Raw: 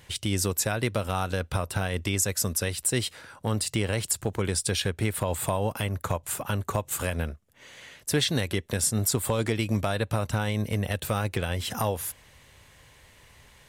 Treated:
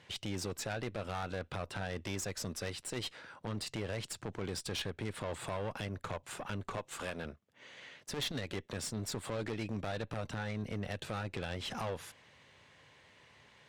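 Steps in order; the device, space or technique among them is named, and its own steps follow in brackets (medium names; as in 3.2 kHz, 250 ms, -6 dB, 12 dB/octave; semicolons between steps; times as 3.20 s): 6.77–7.25 s: high-pass 240 Hz 6 dB/octave; valve radio (band-pass 140–4700 Hz; valve stage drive 29 dB, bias 0.5; transformer saturation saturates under 160 Hz); trim -2.5 dB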